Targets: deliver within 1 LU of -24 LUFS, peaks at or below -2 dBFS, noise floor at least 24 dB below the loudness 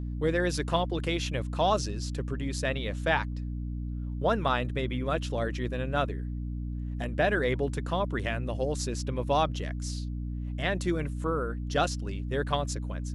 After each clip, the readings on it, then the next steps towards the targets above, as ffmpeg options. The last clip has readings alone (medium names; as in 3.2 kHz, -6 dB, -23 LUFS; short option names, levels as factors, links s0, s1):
hum 60 Hz; highest harmonic 300 Hz; hum level -31 dBFS; loudness -30.5 LUFS; peak level -10.5 dBFS; loudness target -24.0 LUFS
-> -af "bandreject=f=60:t=h:w=4,bandreject=f=120:t=h:w=4,bandreject=f=180:t=h:w=4,bandreject=f=240:t=h:w=4,bandreject=f=300:t=h:w=4"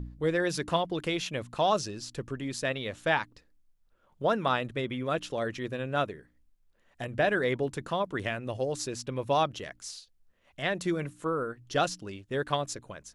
hum not found; loudness -31.0 LUFS; peak level -11.0 dBFS; loudness target -24.0 LUFS
-> -af "volume=2.24"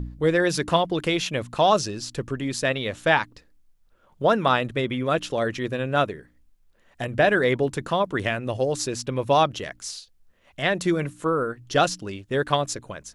loudness -24.0 LUFS; peak level -4.0 dBFS; noise floor -60 dBFS